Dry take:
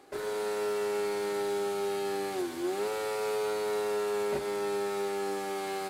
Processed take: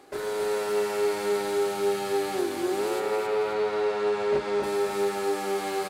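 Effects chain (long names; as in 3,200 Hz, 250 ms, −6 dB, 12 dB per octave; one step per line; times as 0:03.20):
0:02.99–0:04.62: low-pass filter 2,900 Hz → 5,200 Hz 12 dB per octave
repeating echo 269 ms, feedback 37%, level −5 dB
level +3.5 dB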